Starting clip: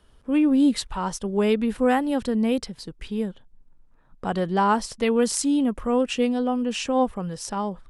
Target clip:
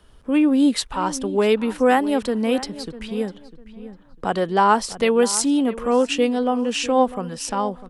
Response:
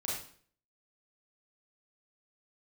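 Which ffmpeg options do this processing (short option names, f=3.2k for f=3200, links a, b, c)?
-filter_complex "[0:a]asplit=2[a][b];[b]adelay=650,lowpass=f=3.3k:p=1,volume=-16dB,asplit=2[c][d];[d]adelay=650,lowpass=f=3.3k:p=1,volume=0.27,asplit=2[e][f];[f]adelay=650,lowpass=f=3.3k:p=1,volume=0.27[g];[a][c][e][g]amix=inputs=4:normalize=0,acrossover=split=250[h][i];[h]acompressor=threshold=-40dB:ratio=6[j];[j][i]amix=inputs=2:normalize=0,volume=5dB"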